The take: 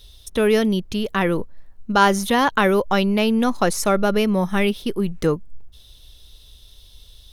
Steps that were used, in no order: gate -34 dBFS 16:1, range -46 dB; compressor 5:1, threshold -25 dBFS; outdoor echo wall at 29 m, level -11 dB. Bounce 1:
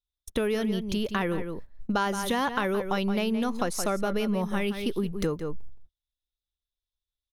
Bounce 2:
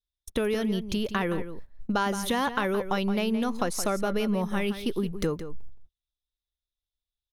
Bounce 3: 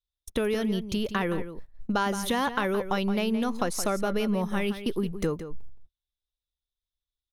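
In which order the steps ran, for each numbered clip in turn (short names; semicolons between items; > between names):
gate > outdoor echo > compressor; gate > compressor > outdoor echo; compressor > gate > outdoor echo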